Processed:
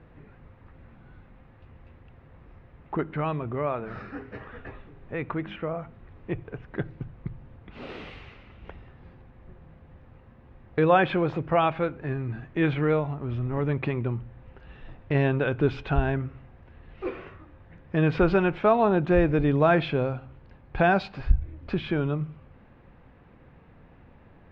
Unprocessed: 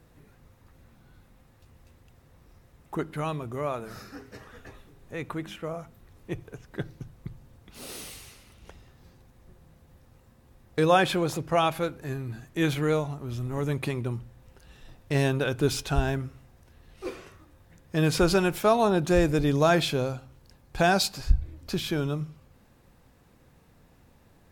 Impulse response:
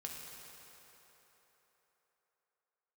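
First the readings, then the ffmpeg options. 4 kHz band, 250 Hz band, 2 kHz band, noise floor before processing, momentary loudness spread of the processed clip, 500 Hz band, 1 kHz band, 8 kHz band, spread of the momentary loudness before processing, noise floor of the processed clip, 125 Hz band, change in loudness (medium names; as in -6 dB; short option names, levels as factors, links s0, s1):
-8.5 dB, +1.5 dB, +1.0 dB, -59 dBFS, 19 LU, +1.5 dB, +1.0 dB, under -30 dB, 19 LU, -54 dBFS, +2.0 dB, +1.0 dB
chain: -filter_complex "[0:a]asplit=2[s0][s1];[s1]acompressor=threshold=0.0158:ratio=6,volume=0.891[s2];[s0][s2]amix=inputs=2:normalize=0,lowpass=f=2700:w=0.5412,lowpass=f=2700:w=1.3066"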